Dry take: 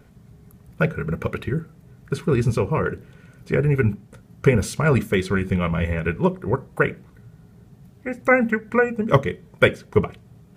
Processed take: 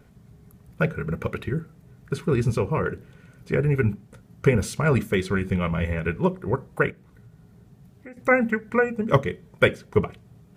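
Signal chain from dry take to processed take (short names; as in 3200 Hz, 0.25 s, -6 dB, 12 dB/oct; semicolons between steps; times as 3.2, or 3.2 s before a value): 6.9–8.17 compressor 2.5:1, threshold -43 dBFS, peak gain reduction 13 dB; gain -2.5 dB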